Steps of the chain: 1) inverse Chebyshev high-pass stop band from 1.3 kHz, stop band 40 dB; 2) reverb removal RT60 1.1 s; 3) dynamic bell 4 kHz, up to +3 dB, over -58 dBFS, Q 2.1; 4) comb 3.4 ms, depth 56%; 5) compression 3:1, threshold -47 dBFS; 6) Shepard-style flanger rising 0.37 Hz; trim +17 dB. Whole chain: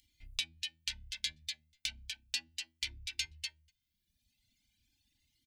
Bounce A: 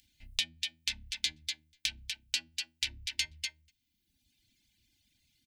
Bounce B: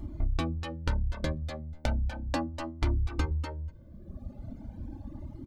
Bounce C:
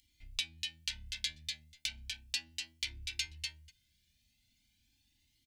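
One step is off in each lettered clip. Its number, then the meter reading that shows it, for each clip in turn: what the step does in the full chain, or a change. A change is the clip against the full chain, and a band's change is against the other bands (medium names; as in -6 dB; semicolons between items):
6, 125 Hz band -2.5 dB; 1, 250 Hz band +36.0 dB; 2, 125 Hz band +3.5 dB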